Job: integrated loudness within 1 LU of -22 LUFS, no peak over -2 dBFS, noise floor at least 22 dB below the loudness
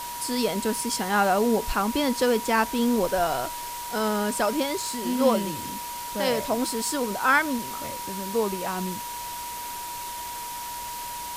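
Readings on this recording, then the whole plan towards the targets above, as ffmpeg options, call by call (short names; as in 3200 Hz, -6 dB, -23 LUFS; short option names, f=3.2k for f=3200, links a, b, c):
steady tone 960 Hz; tone level -34 dBFS; noise floor -35 dBFS; noise floor target -48 dBFS; loudness -26.0 LUFS; peak -8.5 dBFS; loudness target -22.0 LUFS
-> -af "bandreject=f=960:w=30"
-af "afftdn=nr=13:nf=-35"
-af "volume=4dB"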